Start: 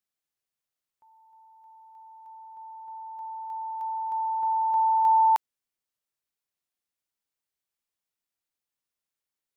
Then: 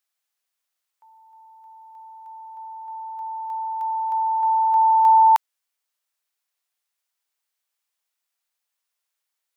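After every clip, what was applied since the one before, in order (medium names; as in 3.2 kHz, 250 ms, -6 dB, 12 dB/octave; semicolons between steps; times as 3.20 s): high-pass 690 Hz; trim +7.5 dB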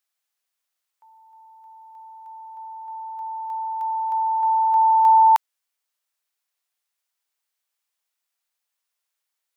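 no audible change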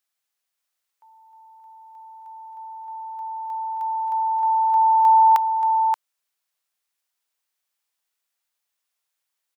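delay 579 ms -6 dB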